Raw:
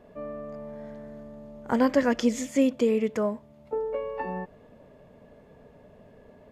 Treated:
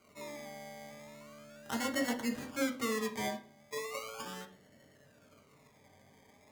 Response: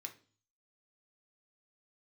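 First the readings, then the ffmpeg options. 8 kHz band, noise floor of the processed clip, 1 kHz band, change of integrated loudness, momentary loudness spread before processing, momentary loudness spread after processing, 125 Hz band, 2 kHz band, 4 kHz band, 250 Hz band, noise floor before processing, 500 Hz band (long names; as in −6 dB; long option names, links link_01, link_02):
−1.5 dB, −64 dBFS, −7.5 dB, −10.5 dB, 20 LU, 18 LU, −10.0 dB, −2.5 dB, 0.0 dB, −11.5 dB, −54 dBFS, −13.0 dB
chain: -filter_complex "[0:a]asplit=2[link_01][link_02];[link_02]asoftclip=type=hard:threshold=-23.5dB,volume=-9.5dB[link_03];[link_01][link_03]amix=inputs=2:normalize=0,acrusher=samples=25:mix=1:aa=0.000001:lfo=1:lforange=15:lforate=0.37[link_04];[1:a]atrim=start_sample=2205,asetrate=38808,aresample=44100[link_05];[link_04][link_05]afir=irnorm=-1:irlink=0,volume=-7dB"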